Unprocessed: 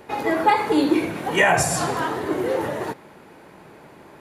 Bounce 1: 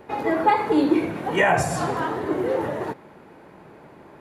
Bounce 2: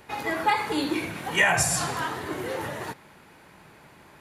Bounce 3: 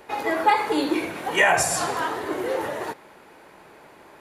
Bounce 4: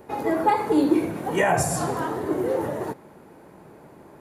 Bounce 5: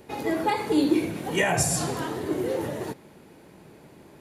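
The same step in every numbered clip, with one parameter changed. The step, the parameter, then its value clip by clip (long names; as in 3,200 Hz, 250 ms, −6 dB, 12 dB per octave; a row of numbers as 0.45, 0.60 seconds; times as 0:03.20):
parametric band, centre frequency: 15,000, 410, 140, 3,000, 1,200 Hertz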